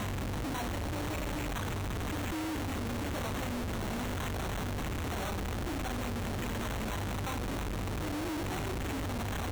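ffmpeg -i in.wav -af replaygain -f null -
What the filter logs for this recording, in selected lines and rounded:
track_gain = +20.3 dB
track_peak = 0.013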